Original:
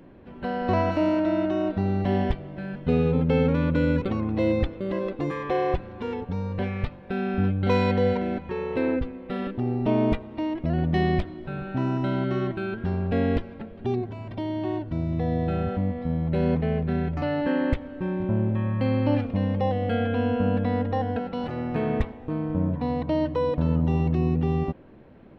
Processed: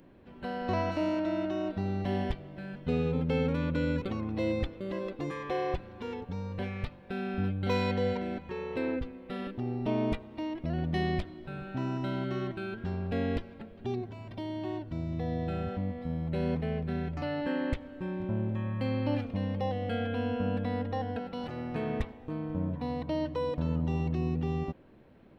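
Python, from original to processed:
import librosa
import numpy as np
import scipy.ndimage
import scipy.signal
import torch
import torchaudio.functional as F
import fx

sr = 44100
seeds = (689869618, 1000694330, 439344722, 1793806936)

y = fx.high_shelf(x, sr, hz=3900.0, db=10.5)
y = y * librosa.db_to_amplitude(-7.5)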